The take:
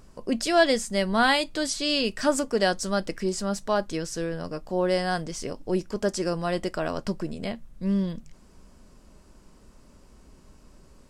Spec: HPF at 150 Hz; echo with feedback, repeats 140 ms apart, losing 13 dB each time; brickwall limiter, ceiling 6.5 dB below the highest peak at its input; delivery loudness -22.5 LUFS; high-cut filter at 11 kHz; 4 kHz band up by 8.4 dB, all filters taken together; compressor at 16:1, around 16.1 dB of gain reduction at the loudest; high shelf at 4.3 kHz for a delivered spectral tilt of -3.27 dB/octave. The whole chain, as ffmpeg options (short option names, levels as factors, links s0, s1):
-af "highpass=150,lowpass=11000,equalizer=f=4000:t=o:g=8.5,highshelf=f=4300:g=4,acompressor=threshold=0.0355:ratio=16,alimiter=limit=0.0631:level=0:latency=1,aecho=1:1:140|280|420:0.224|0.0493|0.0108,volume=4.22"